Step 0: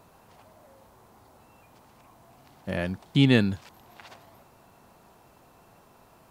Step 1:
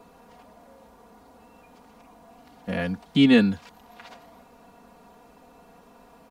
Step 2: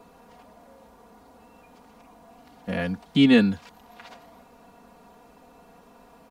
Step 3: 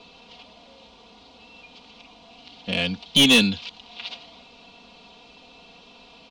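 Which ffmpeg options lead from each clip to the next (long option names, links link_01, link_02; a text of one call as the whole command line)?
ffmpeg -i in.wav -filter_complex "[0:a]highshelf=frequency=7100:gain=-6.5,aecho=1:1:4.2:0.93,acrossover=split=210|580|1900[link_01][link_02][link_03][link_04];[link_02]acompressor=mode=upward:threshold=-51dB:ratio=2.5[link_05];[link_01][link_05][link_03][link_04]amix=inputs=4:normalize=0" out.wav
ffmpeg -i in.wav -af anull out.wav
ffmpeg -i in.wav -af "lowpass=frequency=3500:width=0.5412,lowpass=frequency=3500:width=1.3066,aexciter=amount=13.3:drive=6.9:freq=2700,asoftclip=type=tanh:threshold=-10dB" out.wav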